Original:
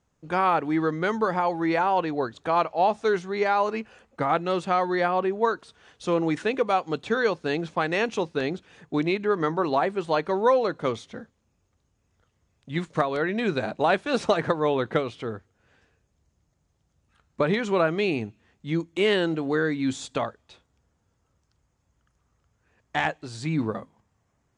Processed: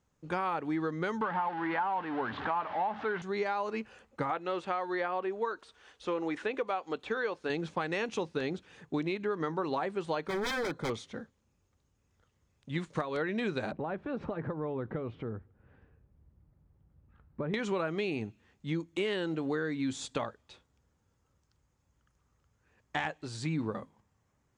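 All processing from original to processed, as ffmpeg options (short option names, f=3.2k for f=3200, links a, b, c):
-filter_complex "[0:a]asettb=1/sr,asplit=3[a][b][c];[a]atrim=end=1.214[d];[b]atrim=start=1.21:end=3.22,asetpts=PTS-STARTPTS,afade=t=in:d=0.004:c=qsin,afade=t=out:st=2.006:d=0.004:c=qsin,aeval=exprs='val(0)+0.5*0.0501*sgn(val(0))':c=same,highpass=140,equalizer=f=150:t=q:w=4:g=-9,equalizer=f=350:t=q:w=4:g=-8,equalizer=f=510:t=q:w=4:g=-9,equalizer=f=880:t=q:w=4:g=5,equalizer=f=1.6k:t=q:w=4:g=3,equalizer=f=2.4k:t=q:w=4:g=-6,lowpass=f=2.8k:w=0.5412,lowpass=f=2.8k:w=1.3066[e];[c]atrim=start=3.216[f];[d][e]acrossfade=d=0.004:c1=hsin:c2=qsin[g];[g][f]acrossfade=d=0.004:c1=qsin:c2=hsin,asettb=1/sr,asplit=3[h][i][j];[h]atrim=end=4.304[k];[i]atrim=start=4.3:end=7.5,asetpts=PTS-STARTPTS,afade=t=in:d=0.004:c=qsin,afade=t=out:st=3.196:d=0.004:c=qsin,acrossover=split=3600[l][m];[m]acompressor=threshold=-55dB:ratio=4:attack=1:release=60[n];[l][n]amix=inputs=2:normalize=0,equalizer=f=140:t=o:w=1.4:g=-13[o];[j]atrim=start=7.496[p];[k][o]acrossfade=d=0.004:c1=hsin:c2=qsin[q];[q][p]acrossfade=d=0.004:c1=qsin:c2=hsin,asettb=1/sr,asplit=3[r][s][t];[r]atrim=end=10.274[u];[s]atrim=start=10.27:end=10.9,asetpts=PTS-STARTPTS,afade=t=in:d=0.004:c=qsin,afade=t=out:st=0.626:d=0.004:c=qsin,lowshelf=f=340:g=3,aeval=exprs='0.0708*(abs(mod(val(0)/0.0708+3,4)-2)-1)':c=same,asuperstop=centerf=2800:order=12:qfactor=6.6[v];[t]atrim=start=10.896[w];[u][v]acrossfade=d=0.004:c1=hsin:c2=qsin[x];[x][w]acrossfade=d=0.004:c1=qsin:c2=hsin,asettb=1/sr,asplit=3[y][z][aa];[y]atrim=end=13.724[ab];[z]atrim=start=13.72:end=17.54,asetpts=PTS-STARTPTS,afade=t=in:d=0.004:c=qsin,afade=t=out:st=3.816:d=0.004:c=qsin,lowpass=1.7k,lowshelf=f=310:g=10.5,acompressor=threshold=-34dB:ratio=2.5:attack=3.2:release=140:knee=1:detection=peak[ac];[aa]atrim=start=17.536[ad];[ab][ac]acrossfade=d=0.004:c1=hsin:c2=qsin[ae];[ae][ad]acrossfade=d=0.004:c1=qsin:c2=hsin,bandreject=f=680:w=12,acompressor=threshold=-26dB:ratio=6,volume=-3dB"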